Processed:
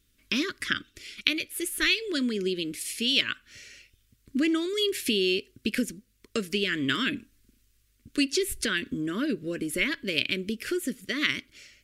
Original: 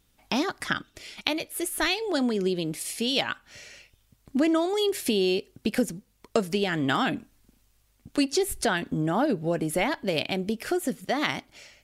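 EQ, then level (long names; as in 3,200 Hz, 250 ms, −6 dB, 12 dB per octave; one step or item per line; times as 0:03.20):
thirty-one-band graphic EQ 160 Hz −10 dB, 500 Hz −5 dB, 800 Hz −6 dB, 1,250 Hz −4 dB
dynamic equaliser 2,600 Hz, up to +6 dB, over −44 dBFS, Q 1.2
Butterworth band-reject 790 Hz, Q 1.1
−1.0 dB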